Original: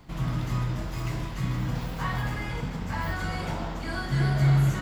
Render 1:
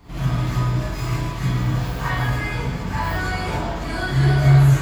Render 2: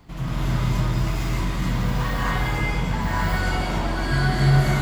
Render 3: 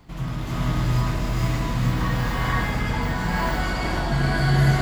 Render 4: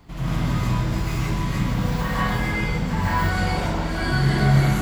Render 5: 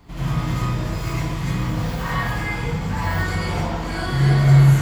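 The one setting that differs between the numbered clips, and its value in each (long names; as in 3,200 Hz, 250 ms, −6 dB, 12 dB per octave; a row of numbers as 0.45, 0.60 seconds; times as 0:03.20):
reverb whose tail is shaped and stops, gate: 80, 300, 510, 200, 130 milliseconds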